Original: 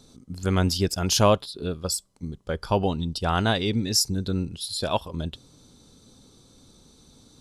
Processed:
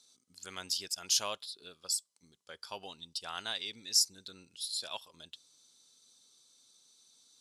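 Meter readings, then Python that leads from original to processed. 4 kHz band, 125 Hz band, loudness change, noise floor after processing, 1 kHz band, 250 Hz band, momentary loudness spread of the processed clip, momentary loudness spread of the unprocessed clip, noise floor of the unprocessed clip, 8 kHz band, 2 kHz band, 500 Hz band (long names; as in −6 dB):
−5.5 dB, −35.5 dB, −9.0 dB, −76 dBFS, −17.5 dB, −30.0 dB, 22 LU, 13 LU, −56 dBFS, −4.5 dB, −12.0 dB, −22.5 dB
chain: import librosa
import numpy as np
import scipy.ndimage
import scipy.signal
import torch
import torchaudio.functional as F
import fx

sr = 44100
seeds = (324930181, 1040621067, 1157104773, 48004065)

y = fx.bandpass_q(x, sr, hz=6800.0, q=0.62)
y = F.gain(torch.from_numpy(y), -4.0).numpy()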